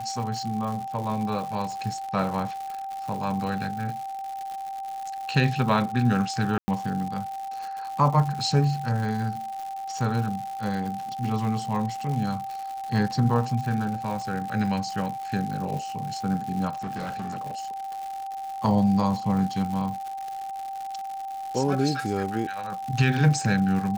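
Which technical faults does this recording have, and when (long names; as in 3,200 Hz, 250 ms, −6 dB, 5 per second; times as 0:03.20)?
surface crackle 190 per second −32 dBFS
whistle 780 Hz −31 dBFS
0:06.58–0:06.68: drop-out 100 ms
0:16.78–0:17.81: clipping −28.5 dBFS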